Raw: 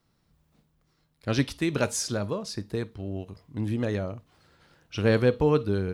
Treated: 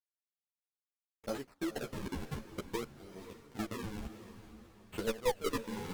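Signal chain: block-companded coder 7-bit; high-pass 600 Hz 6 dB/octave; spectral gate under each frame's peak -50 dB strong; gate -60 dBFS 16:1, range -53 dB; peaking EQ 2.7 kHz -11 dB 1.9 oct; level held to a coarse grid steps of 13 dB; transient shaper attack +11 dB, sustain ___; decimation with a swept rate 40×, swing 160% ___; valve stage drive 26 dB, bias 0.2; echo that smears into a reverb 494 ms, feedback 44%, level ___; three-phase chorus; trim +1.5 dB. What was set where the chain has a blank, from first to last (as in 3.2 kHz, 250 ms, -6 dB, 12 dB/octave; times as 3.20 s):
-8 dB, 0.56 Hz, -12 dB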